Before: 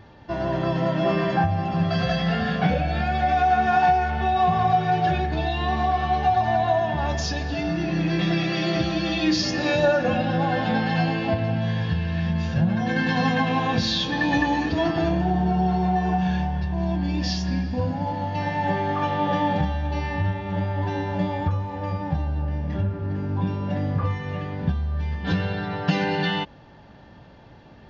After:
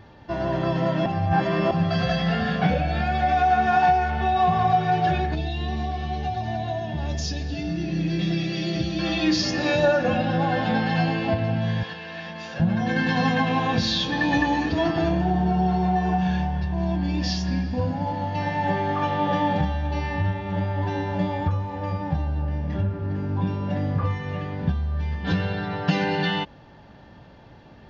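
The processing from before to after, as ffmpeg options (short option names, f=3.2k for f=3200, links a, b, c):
-filter_complex "[0:a]asettb=1/sr,asplit=3[a][b][c];[a]atrim=end=5.354[d];[b]atrim=start=5.35:end=8.99,asetpts=PTS-STARTPTS,afade=t=in:d=0.004:c=qsin,afade=t=out:st=3.636:d=0.004:c=qsin,equalizer=f=1.1k:t=o:w=1.8:g=-13.5[e];[c]atrim=start=8.986[f];[d][e]acrossfade=d=0.004:c1=hsin:c2=qsin[g];[g][f]acrossfade=d=0.004:c1=qsin:c2=hsin,asettb=1/sr,asplit=3[h][i][j];[h]atrim=end=11.834[k];[i]atrim=start=11.83:end=12.6,asetpts=PTS-STARTPTS,afade=t=in:d=0.004:c=qsin,afade=t=out:st=0.766:d=0.004:c=qsin,highpass=430[l];[j]atrim=start=12.596[m];[k][l]acrossfade=d=0.004:c1=hsin:c2=qsin[n];[n][m]acrossfade=d=0.004:c1=qsin:c2=hsin,asplit=3[o][p][q];[o]atrim=end=1.062[r];[p]atrim=start=1.058:end=1.712,asetpts=PTS-STARTPTS,areverse[s];[q]atrim=start=1.708[t];[r][s]acrossfade=d=0.004:c1=hsin:c2=hsin[u];[u][t]acrossfade=d=0.004:c1=hsin:c2=hsin"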